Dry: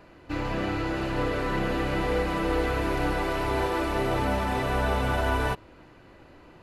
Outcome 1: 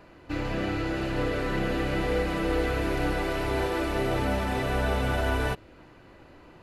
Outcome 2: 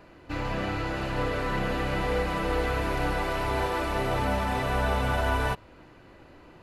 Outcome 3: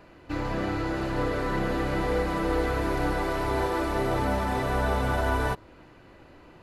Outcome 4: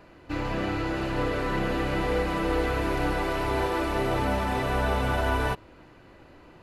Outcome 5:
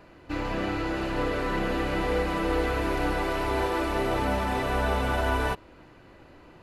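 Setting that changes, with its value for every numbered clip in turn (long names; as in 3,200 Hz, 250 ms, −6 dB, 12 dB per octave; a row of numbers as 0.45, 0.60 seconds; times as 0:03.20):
dynamic equaliser, frequency: 1,000, 340, 2,700, 7,600, 120 Hertz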